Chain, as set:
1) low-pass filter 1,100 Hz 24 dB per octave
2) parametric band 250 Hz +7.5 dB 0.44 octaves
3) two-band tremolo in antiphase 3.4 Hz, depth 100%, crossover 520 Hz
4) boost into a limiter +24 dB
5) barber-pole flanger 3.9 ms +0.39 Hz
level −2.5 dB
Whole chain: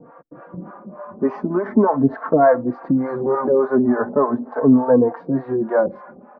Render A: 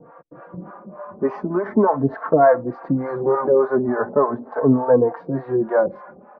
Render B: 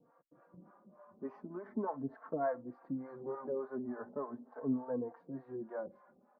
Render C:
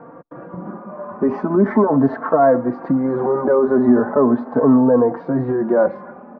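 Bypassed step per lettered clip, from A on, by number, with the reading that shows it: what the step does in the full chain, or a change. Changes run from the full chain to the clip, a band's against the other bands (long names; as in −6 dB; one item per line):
2, 250 Hz band −4.5 dB
4, change in crest factor +2.5 dB
3, change in integrated loudness +2.0 LU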